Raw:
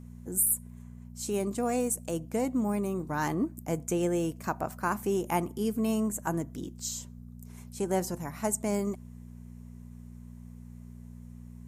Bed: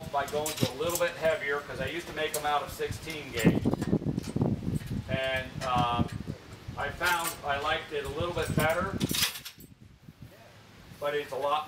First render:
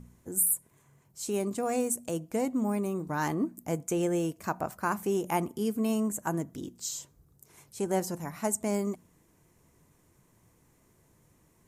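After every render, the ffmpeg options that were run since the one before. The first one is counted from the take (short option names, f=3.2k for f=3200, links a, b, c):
-af "bandreject=f=60:t=h:w=4,bandreject=f=120:t=h:w=4,bandreject=f=180:t=h:w=4,bandreject=f=240:t=h:w=4"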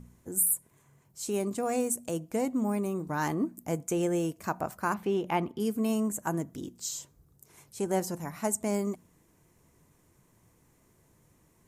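-filter_complex "[0:a]asettb=1/sr,asplit=3[a][b][c];[a]atrim=end=4.944[d];[b]atrim=start=4.94:end=5.6,asetpts=PTS-STARTPTS,afade=t=in:d=0.004:c=qsin,afade=t=out:st=0.656:d=0.004:c=qsin,highshelf=f=5.3k:t=q:w=1.5:g=-13.5[e];[c]atrim=start=5.596[f];[d][e]acrossfade=d=0.004:c1=hsin:c2=qsin[g];[g][f]acrossfade=d=0.004:c1=qsin:c2=hsin"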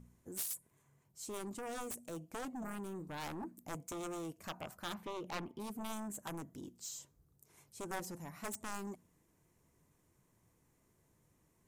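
-af "aeval=exprs='0.211*(cos(1*acos(clip(val(0)/0.211,-1,1)))-cos(1*PI/2))+0.0841*(cos(3*acos(clip(val(0)/0.211,-1,1)))-cos(3*PI/2))+0.00531*(cos(7*acos(clip(val(0)/0.211,-1,1)))-cos(7*PI/2))':c=same,asoftclip=type=tanh:threshold=-28.5dB"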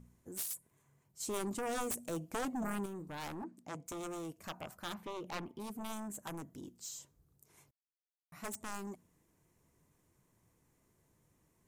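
-filter_complex "[0:a]asettb=1/sr,asplit=3[a][b][c];[a]atrim=end=1.204[d];[b]atrim=start=1.2:end=2.86,asetpts=PTS-STARTPTS,afade=t=in:d=0.004:c=qsin,afade=t=out:st=1.656:d=0.004:c=qsin,acontrast=46[e];[c]atrim=start=2.856[f];[d][e]acrossfade=d=0.004:c1=hsin:c2=qsin[g];[g][f]acrossfade=d=0.004:c1=qsin:c2=hsin,asettb=1/sr,asplit=3[h][i][j];[h]atrim=end=3.434[k];[i]atrim=start=3.43:end=3.86,asetpts=PTS-STARTPTS,afade=t=in:d=0.004:c=qsin,afade=t=out:st=0.426:d=0.004:c=qsin,highpass=120,lowpass=6.4k[l];[j]atrim=start=3.856[m];[k][l]acrossfade=d=0.004:c1=hsin:c2=qsin[n];[n][m]acrossfade=d=0.004:c1=qsin:c2=hsin,asplit=3[o][p][q];[o]atrim=end=7.71,asetpts=PTS-STARTPTS,afade=t=out:st=7.706:d=0.004:c=hsin[r];[p]atrim=start=7.71:end=8.32,asetpts=PTS-STARTPTS,volume=0[s];[q]atrim=start=8.32,asetpts=PTS-STARTPTS,afade=t=in:d=0.004:c=hsin[t];[r][s][t]concat=n=3:v=0:a=1"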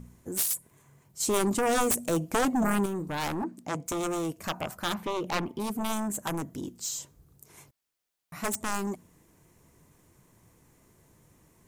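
-af "volume=12dB"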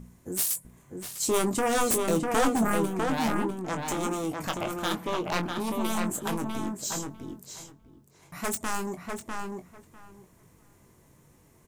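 -filter_complex "[0:a]asplit=2[a][b];[b]adelay=22,volume=-8dB[c];[a][c]amix=inputs=2:normalize=0,asplit=2[d][e];[e]adelay=649,lowpass=f=3.1k:p=1,volume=-3.5dB,asplit=2[f][g];[g]adelay=649,lowpass=f=3.1k:p=1,volume=0.16,asplit=2[h][i];[i]adelay=649,lowpass=f=3.1k:p=1,volume=0.16[j];[d][f][h][j]amix=inputs=4:normalize=0"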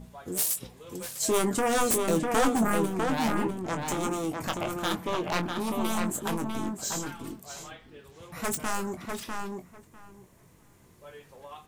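-filter_complex "[1:a]volume=-17dB[a];[0:a][a]amix=inputs=2:normalize=0"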